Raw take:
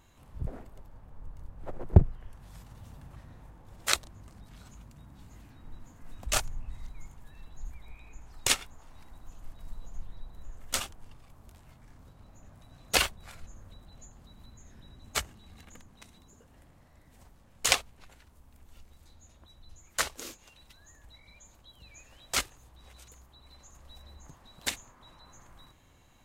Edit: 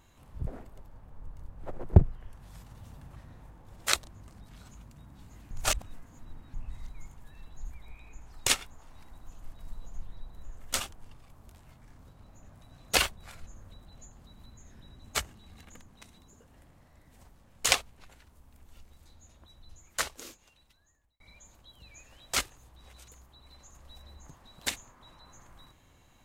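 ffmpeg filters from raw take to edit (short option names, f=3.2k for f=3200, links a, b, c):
-filter_complex "[0:a]asplit=4[a][b][c][d];[a]atrim=end=5.512[e];[b]atrim=start=5.508:end=6.542,asetpts=PTS-STARTPTS,areverse[f];[c]atrim=start=6.538:end=21.2,asetpts=PTS-STARTPTS,afade=t=out:st=13.202:d=1.46[g];[d]atrim=start=21.2,asetpts=PTS-STARTPTS,afade=t=in:d=0.004:c=hsin[h];[e][f]acrossfade=d=0.004:c1=hsin:c2=hsin[i];[g][h]concat=n=2:v=0:a=1[j];[i][j]acrossfade=d=0.004:c1=hsin:c2=hsin"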